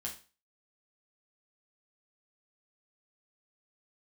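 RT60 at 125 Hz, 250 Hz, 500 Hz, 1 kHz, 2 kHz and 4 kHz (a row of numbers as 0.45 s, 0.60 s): 0.35 s, 0.35 s, 0.35 s, 0.35 s, 0.35 s, 0.35 s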